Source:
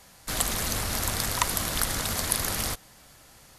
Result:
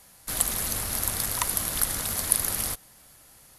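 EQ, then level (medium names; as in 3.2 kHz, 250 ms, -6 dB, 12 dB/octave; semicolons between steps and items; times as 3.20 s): peaking EQ 11 kHz +10.5 dB 0.56 oct; -4.0 dB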